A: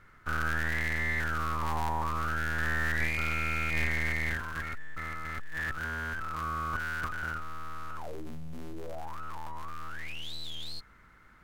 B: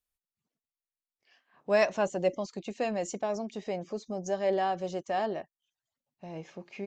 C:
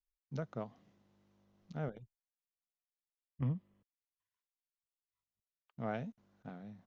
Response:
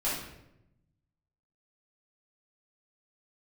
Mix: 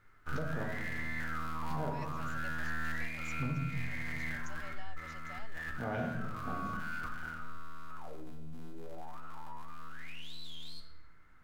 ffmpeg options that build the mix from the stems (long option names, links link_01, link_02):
-filter_complex "[0:a]volume=-11dB,asplit=2[link_01][link_02];[link_02]volume=-8.5dB[link_03];[1:a]highpass=1300,acompressor=threshold=-41dB:ratio=2,adelay=200,volume=-9.5dB[link_04];[2:a]volume=1dB,asplit=2[link_05][link_06];[link_06]volume=-4dB[link_07];[3:a]atrim=start_sample=2205[link_08];[link_03][link_07]amix=inputs=2:normalize=0[link_09];[link_09][link_08]afir=irnorm=-1:irlink=0[link_10];[link_01][link_04][link_05][link_10]amix=inputs=4:normalize=0,alimiter=level_in=1dB:limit=-24dB:level=0:latency=1:release=413,volume=-1dB"